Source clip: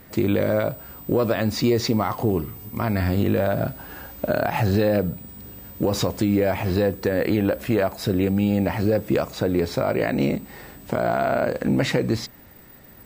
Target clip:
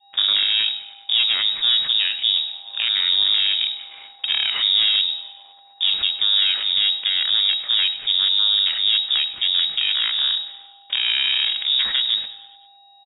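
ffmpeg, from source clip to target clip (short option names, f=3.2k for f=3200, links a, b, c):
-filter_complex "[0:a]agate=range=-36dB:threshold=-37dB:ratio=16:detection=peak,aeval=exprs='val(0)+0.00398*sin(2*PI*3000*n/s)':c=same,aresample=11025,aeval=exprs='max(val(0),0)':c=same,aresample=44100,lowpass=f=3.2k:t=q:w=0.5098,lowpass=f=3.2k:t=q:w=0.6013,lowpass=f=3.2k:t=q:w=0.9,lowpass=f=3.2k:t=q:w=2.563,afreqshift=-3800,asplit=2[a][b];[b]asplit=5[c][d][e][f][g];[c]adelay=102,afreqshift=-41,volume=-17dB[h];[d]adelay=204,afreqshift=-82,volume=-22dB[i];[e]adelay=306,afreqshift=-123,volume=-27.1dB[j];[f]adelay=408,afreqshift=-164,volume=-32.1dB[k];[g]adelay=510,afreqshift=-205,volume=-37.1dB[l];[h][i][j][k][l]amix=inputs=5:normalize=0[m];[a][m]amix=inputs=2:normalize=0,adynamicequalizer=threshold=0.00708:dfrequency=1000:dqfactor=0.96:tfrequency=1000:tqfactor=0.96:attack=5:release=100:ratio=0.375:range=3:mode=cutabove:tftype=bell,volume=4dB"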